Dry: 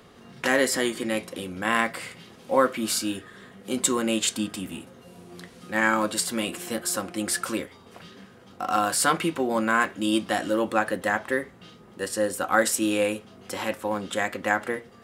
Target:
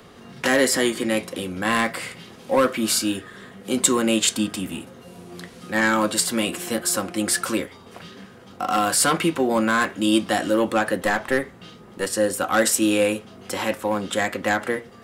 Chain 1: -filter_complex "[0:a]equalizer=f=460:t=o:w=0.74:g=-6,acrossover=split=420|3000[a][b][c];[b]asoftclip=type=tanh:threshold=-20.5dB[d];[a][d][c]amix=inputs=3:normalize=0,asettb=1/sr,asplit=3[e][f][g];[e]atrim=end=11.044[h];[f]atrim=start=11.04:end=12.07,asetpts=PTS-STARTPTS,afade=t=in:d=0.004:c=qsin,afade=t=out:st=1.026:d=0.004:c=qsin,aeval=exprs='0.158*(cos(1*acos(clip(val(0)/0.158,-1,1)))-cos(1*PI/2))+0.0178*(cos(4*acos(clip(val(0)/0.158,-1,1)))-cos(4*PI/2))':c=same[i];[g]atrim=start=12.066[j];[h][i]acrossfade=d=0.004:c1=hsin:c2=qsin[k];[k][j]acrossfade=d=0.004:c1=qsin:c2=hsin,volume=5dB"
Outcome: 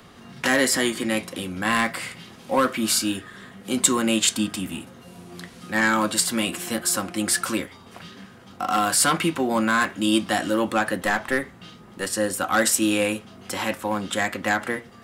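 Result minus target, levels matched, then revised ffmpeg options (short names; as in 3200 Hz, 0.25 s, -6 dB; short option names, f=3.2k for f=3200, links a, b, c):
500 Hz band -3.0 dB
-filter_complex "[0:a]acrossover=split=420|3000[a][b][c];[b]asoftclip=type=tanh:threshold=-20.5dB[d];[a][d][c]amix=inputs=3:normalize=0,asettb=1/sr,asplit=3[e][f][g];[e]atrim=end=11.044[h];[f]atrim=start=11.04:end=12.07,asetpts=PTS-STARTPTS,afade=t=in:d=0.004:c=qsin,afade=t=out:st=1.026:d=0.004:c=qsin,aeval=exprs='0.158*(cos(1*acos(clip(val(0)/0.158,-1,1)))-cos(1*PI/2))+0.0178*(cos(4*acos(clip(val(0)/0.158,-1,1)))-cos(4*PI/2))':c=same[i];[g]atrim=start=12.066[j];[h][i]acrossfade=d=0.004:c1=hsin:c2=qsin[k];[k][j]acrossfade=d=0.004:c1=qsin:c2=hsin,volume=5dB"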